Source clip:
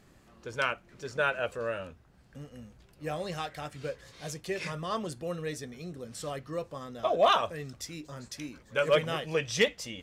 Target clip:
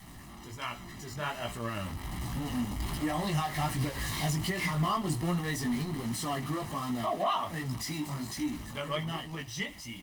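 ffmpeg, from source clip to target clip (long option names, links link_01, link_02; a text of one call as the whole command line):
ffmpeg -i in.wav -filter_complex "[0:a]aeval=exprs='val(0)+0.5*0.0168*sgn(val(0))':channel_layout=same,asettb=1/sr,asplit=3[link_01][link_02][link_03];[link_01]atrim=end=5.924[link_04];[link_02]atrim=start=5.92:end=8.37,asetpts=PTS-STARTPTS,afade=type=in:duration=0.004:curve=qsin,afade=type=out:start_time=2.446:duration=0.004:curve=qsin,highpass=100[link_05];[link_03]atrim=start=8.366[link_06];[link_04][link_05]acrossfade=duration=0.004:curve1=hsin:curve2=qsin[link_07];[link_07][link_06]acrossfade=duration=0.004:curve1=qsin:curve2=hsin,aecho=1:1:1:0.86,adynamicequalizer=threshold=0.00501:dfrequency=290:dqfactor=2.5:tfrequency=290:tqfactor=2.5:attack=5:release=100:ratio=0.375:range=2:mode=boostabove:tftype=bell,dynaudnorm=framelen=200:gausssize=17:maxgain=15dB,alimiter=limit=-12dB:level=0:latency=1:release=207,flanger=delay=16.5:depth=4.4:speed=1.3,aecho=1:1:74|148:0.0708|0.0191,volume=-7dB" -ar 48000 -c:a libopus -b:a 32k out.opus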